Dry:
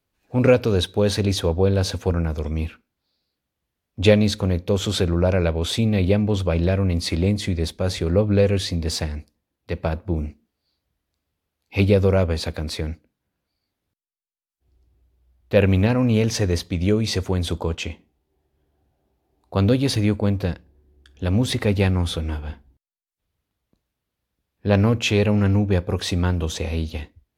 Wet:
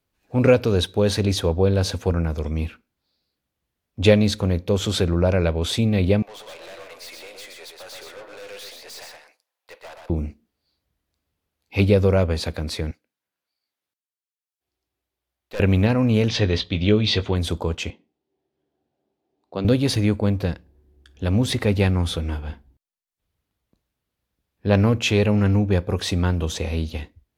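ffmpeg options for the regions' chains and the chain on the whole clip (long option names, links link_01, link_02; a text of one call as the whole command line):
ffmpeg -i in.wav -filter_complex "[0:a]asettb=1/sr,asplit=3[link_01][link_02][link_03];[link_01]atrim=end=6.224[link_04];[link_02]atrim=start=6.22:end=10.1,asetpts=PTS-STARTPTS,afade=type=in:duration=0.004:curve=qsin,afade=type=out:start_time=3.876:duration=0.004:curve=qsin,highpass=frequency=620:width=0.5412,highpass=frequency=620:width=1.3066,aeval=exprs='(tanh(79.4*val(0)+0.2)-tanh(0.2))/79.4':channel_layout=same,aecho=1:1:122:0.631,atrim=end_sample=171108[link_05];[link_03]atrim=start=10.096[link_06];[link_04][link_05]acrossfade=duration=0.004:curve1=hsin:curve2=qsin[link_07];[link_07][link_06]acrossfade=duration=0.004:curve1=qsin:curve2=hsin,asettb=1/sr,asplit=3[link_08][link_09][link_10];[link_08]atrim=end=12.914[link_11];[link_09]atrim=start=12.91:end=15.6,asetpts=PTS-STARTPTS,afade=type=in:duration=0.004:curve=qsin,afade=type=out:start_time=2.686:duration=0.004:curve=qsin,highpass=frequency=1100:poles=1,aeval=exprs='(tanh(22.4*val(0)+0.55)-tanh(0.55))/22.4':channel_layout=same[link_12];[link_10]atrim=start=15.596[link_13];[link_11][link_12]acrossfade=duration=0.004:curve1=hsin:curve2=qsin[link_14];[link_14][link_13]acrossfade=duration=0.004:curve1=qsin:curve2=hsin,asettb=1/sr,asplit=3[link_15][link_16][link_17];[link_15]atrim=end=16.284[link_18];[link_16]atrim=start=16.28:end=17.36,asetpts=PTS-STARTPTS,afade=type=in:duration=0.004:curve=qsin,afade=type=out:start_time=1.076:duration=0.004:curve=qsin,lowpass=frequency=3500:width_type=q:width=3.3,asplit=2[link_19][link_20];[link_20]adelay=19,volume=-11dB[link_21];[link_19][link_21]amix=inputs=2:normalize=0,atrim=end_sample=47628[link_22];[link_17]atrim=start=17.356[link_23];[link_18][link_22]acrossfade=duration=0.004:curve1=hsin:curve2=qsin[link_24];[link_24][link_23]acrossfade=duration=0.004:curve1=qsin:curve2=hsin,asettb=1/sr,asplit=3[link_25][link_26][link_27];[link_25]atrim=end=17.904[link_28];[link_26]atrim=start=17.9:end=19.65,asetpts=PTS-STARTPTS,afade=type=in:duration=0.004:curve=qsin,afade=type=out:start_time=1.746:duration=0.004:curve=qsin,highpass=250,lowpass=4500,equalizer=frequency=1400:width=0.44:gain=-7.5[link_29];[link_27]atrim=start=19.646[link_30];[link_28][link_29]acrossfade=duration=0.004:curve1=hsin:curve2=qsin[link_31];[link_31][link_30]acrossfade=duration=0.004:curve1=qsin:curve2=hsin" out.wav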